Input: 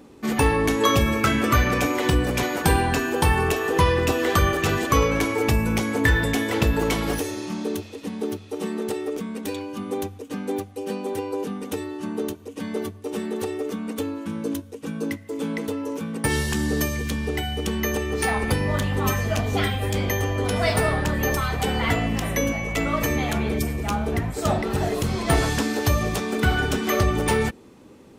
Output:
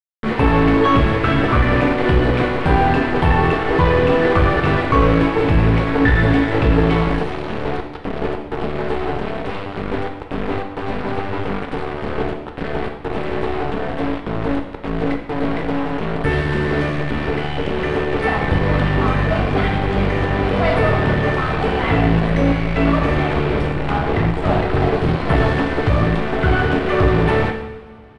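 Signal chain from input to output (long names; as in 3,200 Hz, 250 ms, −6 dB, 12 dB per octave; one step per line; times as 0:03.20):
in parallel at +1 dB: brickwall limiter −17.5 dBFS, peak gain reduction 11 dB
on the sum: asymmetric clip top −28 dBFS
bit reduction 4 bits
high-frequency loss of the air 450 metres
on a send at −3 dB: convolution reverb, pre-delay 3 ms
on the sum: downsampling to 22,050 Hz
level +3.5 dB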